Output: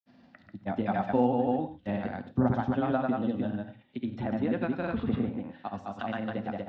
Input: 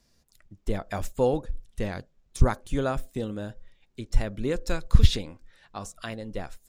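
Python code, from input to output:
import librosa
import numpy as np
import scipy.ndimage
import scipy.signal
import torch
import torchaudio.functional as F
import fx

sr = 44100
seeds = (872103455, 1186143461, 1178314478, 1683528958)

p1 = fx.env_lowpass_down(x, sr, base_hz=1700.0, full_db=-16.0)
p2 = fx.cabinet(p1, sr, low_hz=110.0, low_slope=24, high_hz=3100.0, hz=(140.0, 250.0, 440.0, 770.0, 1100.0, 2300.0), db=(-4, 8, -8, 7, -4, -5))
p3 = p2 + fx.echo_single(p2, sr, ms=174, db=-3.5, dry=0)
p4 = fx.granulator(p3, sr, seeds[0], grain_ms=100.0, per_s=20.0, spray_ms=100.0, spread_st=0)
p5 = fx.rev_gated(p4, sr, seeds[1], gate_ms=130, shape='flat', drr_db=10.5)
y = fx.band_squash(p5, sr, depth_pct=40)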